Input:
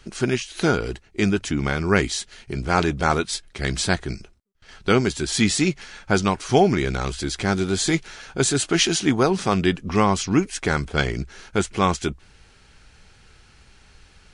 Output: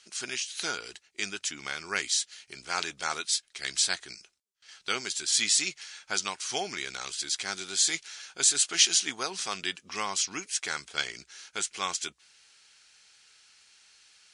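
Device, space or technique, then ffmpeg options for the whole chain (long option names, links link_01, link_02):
piezo pickup straight into a mixer: -af "lowpass=7600,aderivative,volume=4.5dB"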